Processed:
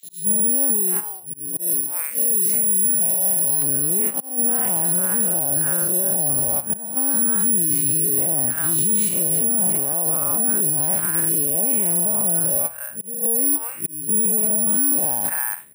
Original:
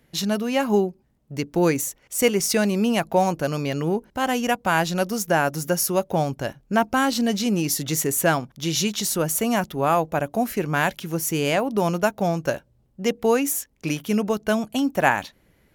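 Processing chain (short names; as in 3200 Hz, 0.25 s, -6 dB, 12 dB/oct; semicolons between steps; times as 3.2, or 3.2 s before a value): time blur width 0.13 s; three bands offset in time highs, lows, mids 30/330 ms, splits 1000/3000 Hz; compressor 6:1, threshold -27 dBFS, peak gain reduction 9 dB; auto swell 0.466 s; HPF 120 Hz 12 dB/oct; tape spacing loss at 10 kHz 39 dB; gate -38 dBFS, range -20 dB; careless resampling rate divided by 4×, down filtered, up zero stuff; high shelf 2100 Hz +7 dB, from 1.6 s +12 dB, from 3.62 s +5.5 dB; maximiser +31.5 dB; mismatched tape noise reduction encoder only; gain -6.5 dB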